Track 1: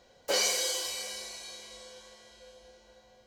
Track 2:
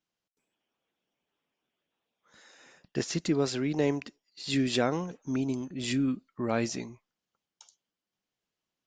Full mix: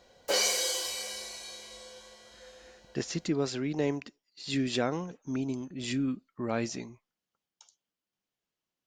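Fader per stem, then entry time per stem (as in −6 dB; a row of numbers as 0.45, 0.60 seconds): +0.5, −2.5 decibels; 0.00, 0.00 seconds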